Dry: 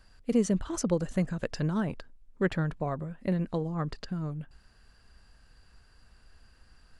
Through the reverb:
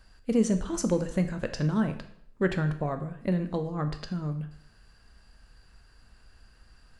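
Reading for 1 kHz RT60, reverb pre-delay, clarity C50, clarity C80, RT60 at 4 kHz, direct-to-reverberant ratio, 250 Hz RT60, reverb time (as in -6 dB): 0.65 s, 5 ms, 11.5 dB, 14.0 dB, 0.60 s, 7.5 dB, 0.65 s, 0.70 s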